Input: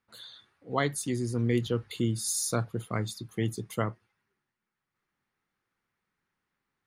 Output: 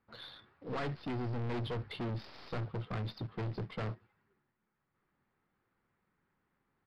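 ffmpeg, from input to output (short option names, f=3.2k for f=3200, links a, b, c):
-af "aeval=exprs='(tanh(112*val(0)+0.1)-tanh(0.1))/112':c=same,aresample=11025,acrusher=bits=3:mode=log:mix=0:aa=0.000001,aresample=44100,aemphasis=mode=production:type=75kf,adynamicsmooth=sensitivity=3:basefreq=1.4k,volume=6.5dB"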